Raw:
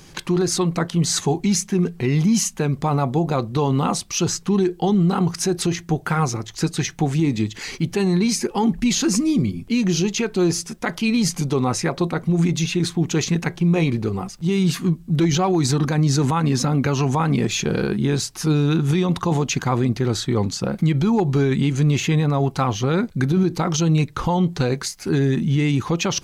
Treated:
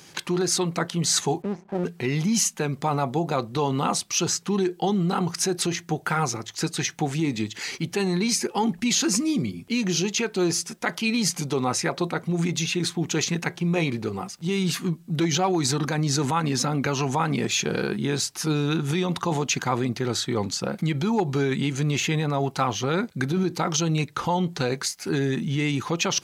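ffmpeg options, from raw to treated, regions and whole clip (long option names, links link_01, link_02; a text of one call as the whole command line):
ffmpeg -i in.wav -filter_complex "[0:a]asettb=1/sr,asplit=3[link_01][link_02][link_03];[link_01]atrim=end=1.424[link_04];[link_02]atrim=start=1.42:end=1.84,asetpts=PTS-STARTPTS,afade=type=in:duration=0.004:curve=qsin,afade=type=out:start_time=0.416:duration=0.004:curve=qsin,lowpass=frequency=760:width_type=q:width=4.6,aeval=exprs='max(val(0),0)':channel_layout=same[link_05];[link_03]atrim=start=1.836[link_06];[link_04][link_05]acrossfade=duration=0.004:curve1=hsin:curve2=qsin[link_07];[link_07][link_06]acrossfade=duration=0.004:curve1=qsin:curve2=hsin,highpass=100,lowshelf=frequency=410:gain=-7.5,bandreject=frequency=1100:width=21" out.wav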